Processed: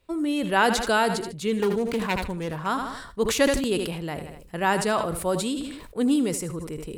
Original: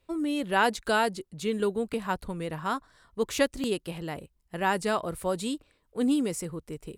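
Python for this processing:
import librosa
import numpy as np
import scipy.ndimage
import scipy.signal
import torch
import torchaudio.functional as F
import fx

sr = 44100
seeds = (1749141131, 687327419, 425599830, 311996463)

y = fx.self_delay(x, sr, depth_ms=0.25, at=(1.57, 2.66))
y = fx.echo_feedback(y, sr, ms=78, feedback_pct=37, wet_db=-15.0)
y = fx.sustainer(y, sr, db_per_s=54.0)
y = F.gain(torch.from_numpy(y), 3.0).numpy()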